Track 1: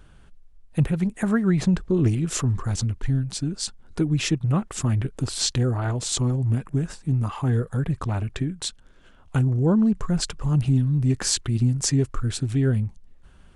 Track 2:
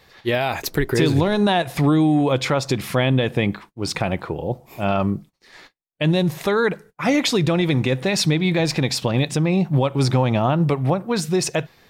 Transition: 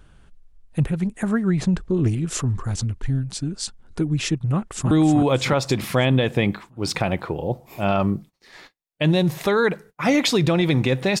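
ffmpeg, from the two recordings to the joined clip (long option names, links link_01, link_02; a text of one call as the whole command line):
ffmpeg -i cue0.wav -i cue1.wav -filter_complex "[0:a]apad=whole_dur=11.2,atrim=end=11.2,atrim=end=4.912[link_01];[1:a]atrim=start=1.908:end=8.2[link_02];[link_01][link_02]acrossfade=duration=0.004:curve1=hsin:curve2=hsin,asplit=2[link_03][link_04];[link_04]afade=type=in:start_time=4.54:duration=0.01,afade=type=out:start_time=4.91:duration=0.01,aecho=0:1:310|620|930|1240|1550|1860|2170:0.562341|0.309288|0.170108|0.0935595|0.0514577|0.0283018|0.015566[link_05];[link_03][link_05]amix=inputs=2:normalize=0" out.wav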